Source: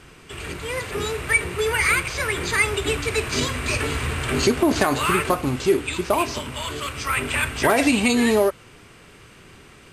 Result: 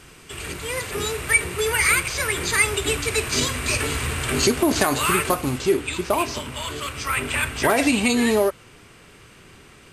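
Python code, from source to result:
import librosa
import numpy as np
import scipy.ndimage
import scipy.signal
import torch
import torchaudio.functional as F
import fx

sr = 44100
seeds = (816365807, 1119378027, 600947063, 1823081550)

y = fx.high_shelf(x, sr, hz=5000.0, db=fx.steps((0.0, 9.0), (5.57, 2.5)))
y = y * librosa.db_to_amplitude(-1.0)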